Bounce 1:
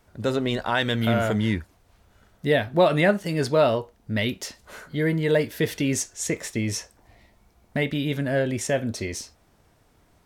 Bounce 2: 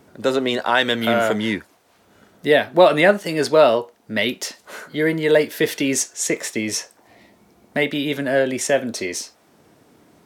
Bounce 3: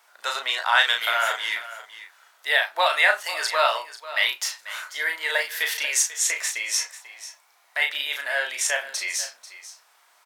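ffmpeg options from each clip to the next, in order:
-filter_complex "[0:a]highpass=280,acrossover=split=360[a][b];[a]acompressor=mode=upward:threshold=-50dB:ratio=2.5[c];[c][b]amix=inputs=2:normalize=0,volume=6.5dB"
-filter_complex "[0:a]highpass=f=900:w=0.5412,highpass=f=900:w=1.3066,asplit=2[a][b];[b]adelay=35,volume=-4.5dB[c];[a][c]amix=inputs=2:normalize=0,aecho=1:1:491:0.178"

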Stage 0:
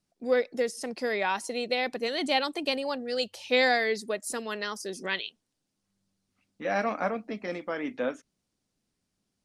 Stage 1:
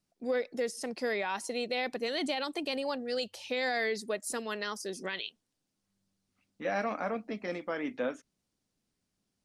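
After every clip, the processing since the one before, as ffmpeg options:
-af "alimiter=limit=-20.5dB:level=0:latency=1:release=44,volume=-2dB"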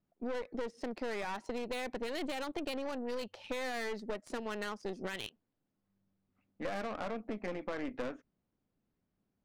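-af "adynamicsmooth=sensitivity=4:basefreq=1.9k,aeval=exprs='(tanh(50.1*val(0)+0.7)-tanh(0.7))/50.1':c=same,acompressor=threshold=-39dB:ratio=6,volume=5.5dB"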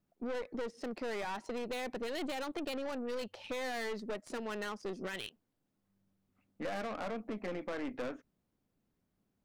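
-af "asoftclip=type=tanh:threshold=-32.5dB,volume=2dB"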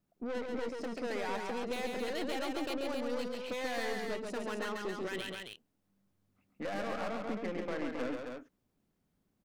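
-af "aecho=1:1:137|268.2:0.631|0.562"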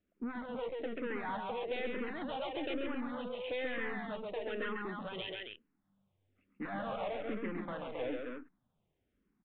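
-filter_complex "[0:a]asoftclip=type=hard:threshold=-30.5dB,aresample=8000,aresample=44100,asplit=2[a][b];[b]afreqshift=-1.1[c];[a][c]amix=inputs=2:normalize=1,volume=2dB"

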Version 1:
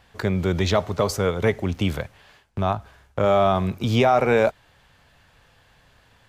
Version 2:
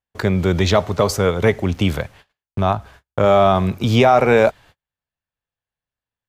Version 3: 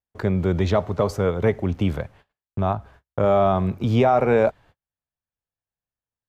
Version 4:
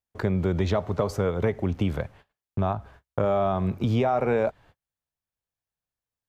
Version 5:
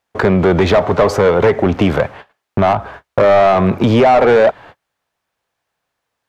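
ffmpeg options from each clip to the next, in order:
-af "agate=range=-40dB:threshold=-47dB:ratio=16:detection=peak,volume=5dB"
-af "highshelf=f=2k:g=-12,volume=-3.5dB"
-af "acompressor=threshold=-21dB:ratio=3"
-filter_complex "[0:a]asplit=2[a][b];[b]highpass=f=720:p=1,volume=23dB,asoftclip=type=tanh:threshold=-10.5dB[c];[a][c]amix=inputs=2:normalize=0,lowpass=f=1.4k:p=1,volume=-6dB,volume=9dB"

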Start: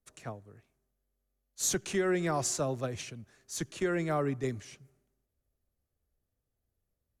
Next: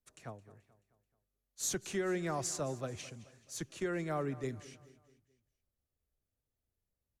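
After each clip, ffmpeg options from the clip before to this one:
-af "aecho=1:1:216|432|648|864:0.126|0.0592|0.0278|0.0131,volume=-5.5dB"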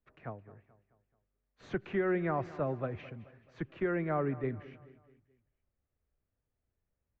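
-af "lowpass=f=2.3k:w=0.5412,lowpass=f=2.3k:w=1.3066,volume=4dB"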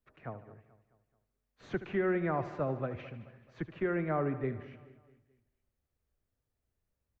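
-af "aecho=1:1:75|150|225|300|375:0.211|0.112|0.0594|0.0315|0.0167"

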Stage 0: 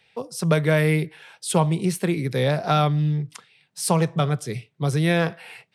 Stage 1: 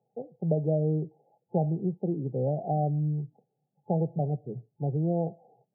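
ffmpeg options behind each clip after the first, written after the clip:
-af "afftfilt=real='re*between(b*sr/4096,110,860)':imag='im*between(b*sr/4096,110,860)':win_size=4096:overlap=0.75,volume=-6.5dB"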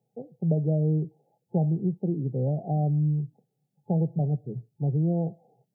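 -af "equalizer=f=780:t=o:w=2.5:g=-10,volume=5.5dB"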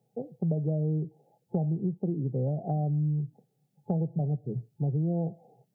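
-af "acompressor=threshold=-33dB:ratio=2.5,volume=4dB"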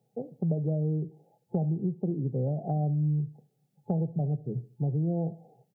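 -af "aecho=1:1:73|146|219:0.106|0.0413|0.0161"

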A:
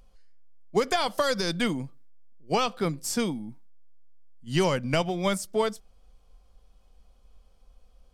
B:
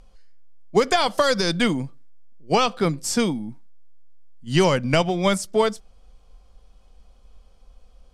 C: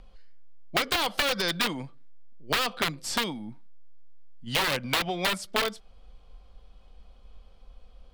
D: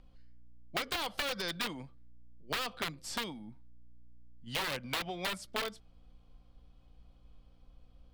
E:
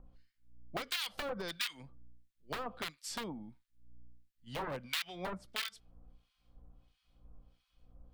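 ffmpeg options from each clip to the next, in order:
-af "lowpass=10k,volume=6dB"
-filter_complex "[0:a]aeval=exprs='(mod(4.22*val(0)+1,2)-1)/4.22':c=same,highshelf=f=4.9k:t=q:w=1.5:g=-7,acrossover=split=510|2400[a][b][c];[a]acompressor=threshold=-36dB:ratio=4[d];[b]acompressor=threshold=-28dB:ratio=4[e];[c]acompressor=threshold=-27dB:ratio=4[f];[d][e][f]amix=inputs=3:normalize=0"
-af "aeval=exprs='val(0)+0.002*(sin(2*PI*60*n/s)+sin(2*PI*2*60*n/s)/2+sin(2*PI*3*60*n/s)/3+sin(2*PI*4*60*n/s)/4+sin(2*PI*5*60*n/s)/5)':c=same,volume=-9dB"
-filter_complex "[0:a]acrossover=split=1400[a][b];[a]aeval=exprs='val(0)*(1-1/2+1/2*cos(2*PI*1.5*n/s))':c=same[c];[b]aeval=exprs='val(0)*(1-1/2-1/2*cos(2*PI*1.5*n/s))':c=same[d];[c][d]amix=inputs=2:normalize=0,volume=1.5dB"

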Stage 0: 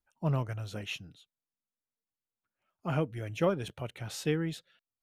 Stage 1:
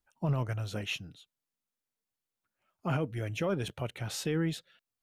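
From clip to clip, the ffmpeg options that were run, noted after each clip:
-af "alimiter=level_in=0.5dB:limit=-24dB:level=0:latency=1:release=12,volume=-0.5dB,volume=3dB"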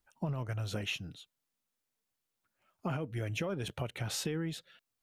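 -af "acompressor=threshold=-36dB:ratio=6,volume=3.5dB"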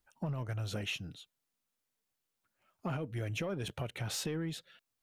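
-af "asoftclip=type=tanh:threshold=-27dB"

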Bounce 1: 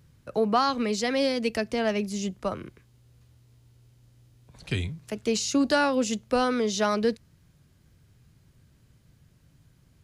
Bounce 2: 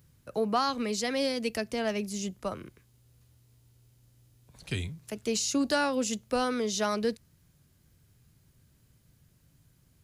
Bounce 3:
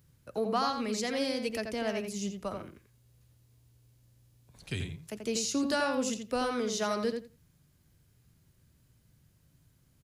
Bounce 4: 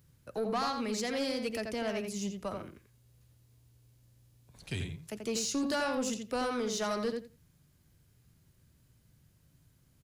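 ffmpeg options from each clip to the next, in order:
-af "highshelf=f=8.1k:g=12,volume=-4.5dB"
-filter_complex "[0:a]asplit=2[a][b];[b]adelay=85,lowpass=f=3.1k:p=1,volume=-5dB,asplit=2[c][d];[d]adelay=85,lowpass=f=3.1k:p=1,volume=0.16,asplit=2[e][f];[f]adelay=85,lowpass=f=3.1k:p=1,volume=0.16[g];[a][c][e][g]amix=inputs=4:normalize=0,volume=-3dB"
-af "asoftclip=type=tanh:threshold=-25.5dB"

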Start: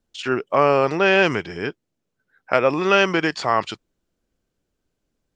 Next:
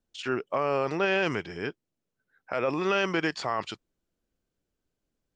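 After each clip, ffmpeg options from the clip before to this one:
-af "alimiter=limit=-10dB:level=0:latency=1:release=13,volume=-6.5dB"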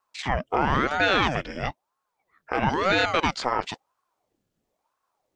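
-af "aeval=exprs='val(0)*sin(2*PI*610*n/s+610*0.8/1*sin(2*PI*1*n/s))':c=same,volume=7dB"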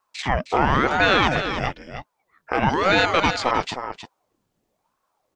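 -af "aecho=1:1:312:0.355,volume=3.5dB"

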